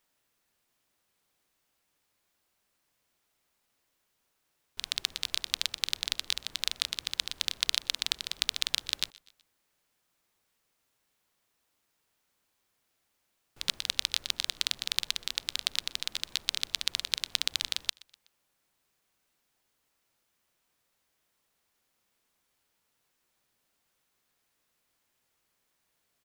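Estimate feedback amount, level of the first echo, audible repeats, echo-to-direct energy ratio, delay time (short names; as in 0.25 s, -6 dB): 49%, -24.0 dB, 2, -23.0 dB, 0.124 s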